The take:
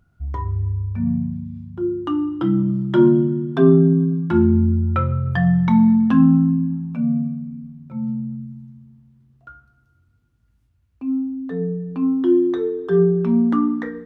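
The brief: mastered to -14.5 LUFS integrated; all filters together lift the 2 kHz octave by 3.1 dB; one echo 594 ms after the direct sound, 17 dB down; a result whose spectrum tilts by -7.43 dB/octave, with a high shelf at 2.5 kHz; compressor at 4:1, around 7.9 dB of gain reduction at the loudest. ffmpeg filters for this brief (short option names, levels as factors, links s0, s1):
-af "equalizer=f=2000:t=o:g=6.5,highshelf=f=2500:g=-6.5,acompressor=threshold=0.126:ratio=4,aecho=1:1:594:0.141,volume=2.66"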